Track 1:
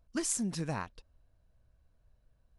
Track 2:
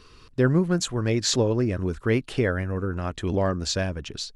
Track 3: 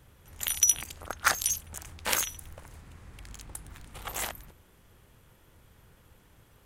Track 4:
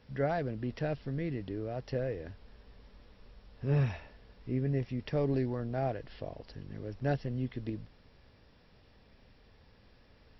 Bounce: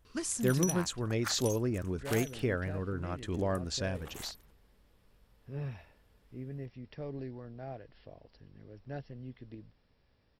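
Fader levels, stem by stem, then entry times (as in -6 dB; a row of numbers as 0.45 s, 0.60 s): -2.5 dB, -8.5 dB, -14.0 dB, -10.5 dB; 0.00 s, 0.05 s, 0.00 s, 1.85 s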